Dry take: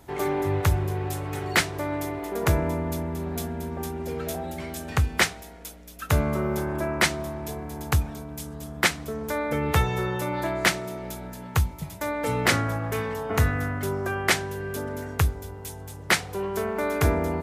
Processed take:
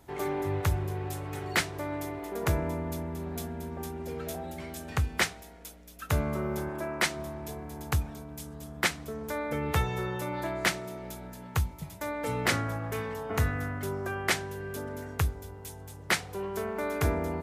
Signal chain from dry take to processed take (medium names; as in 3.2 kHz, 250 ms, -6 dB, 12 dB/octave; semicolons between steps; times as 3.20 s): 6.69–7.16 s: bass shelf 130 Hz -10.5 dB; trim -5.5 dB